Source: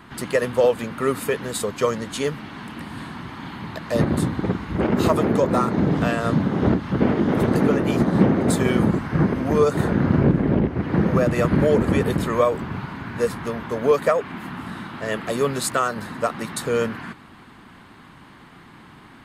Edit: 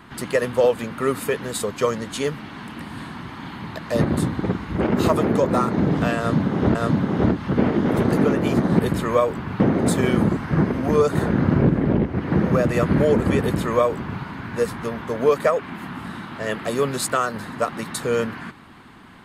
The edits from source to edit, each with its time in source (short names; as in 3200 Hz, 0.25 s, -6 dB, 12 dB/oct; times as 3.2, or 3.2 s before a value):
6.18–6.75 loop, 2 plays
12.03–12.84 copy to 8.22